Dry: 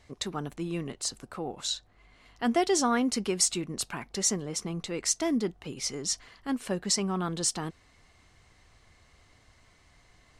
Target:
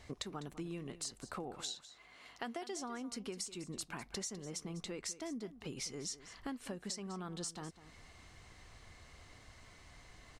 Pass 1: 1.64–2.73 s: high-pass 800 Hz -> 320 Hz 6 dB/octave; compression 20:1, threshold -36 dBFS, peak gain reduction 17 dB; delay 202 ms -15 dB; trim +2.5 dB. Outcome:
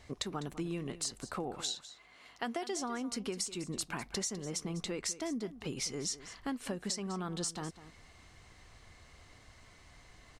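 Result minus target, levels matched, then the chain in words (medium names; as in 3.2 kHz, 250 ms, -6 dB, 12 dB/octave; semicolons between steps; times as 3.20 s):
compression: peak gain reduction -5.5 dB
1.64–2.73 s: high-pass 800 Hz -> 320 Hz 6 dB/octave; compression 20:1, threshold -42 dBFS, peak gain reduction 23 dB; delay 202 ms -15 dB; trim +2.5 dB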